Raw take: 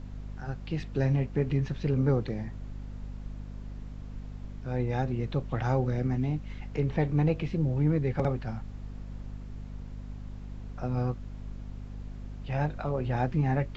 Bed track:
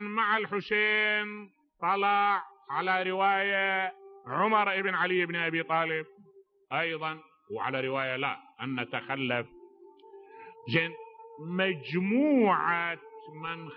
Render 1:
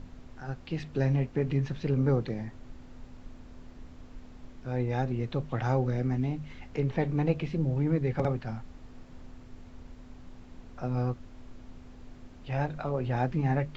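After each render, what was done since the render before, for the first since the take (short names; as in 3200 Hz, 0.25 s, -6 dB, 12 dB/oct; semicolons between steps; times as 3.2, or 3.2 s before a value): notches 50/100/150/200 Hz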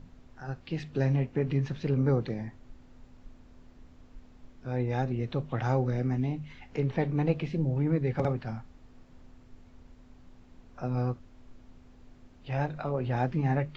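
noise print and reduce 6 dB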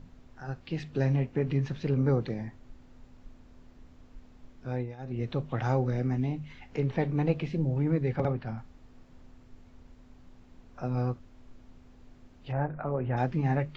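4.72–5.22 dip -18.5 dB, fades 0.24 s; 8.16–8.58 air absorption 120 m; 12.51–13.16 LPF 1600 Hz -> 2500 Hz 24 dB/oct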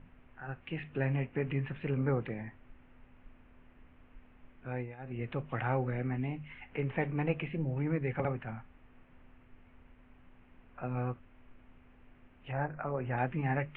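steep low-pass 2800 Hz 48 dB/oct; tilt shelf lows -6 dB, about 1200 Hz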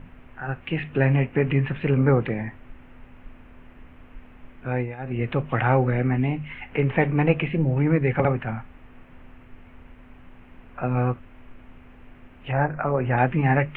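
gain +12 dB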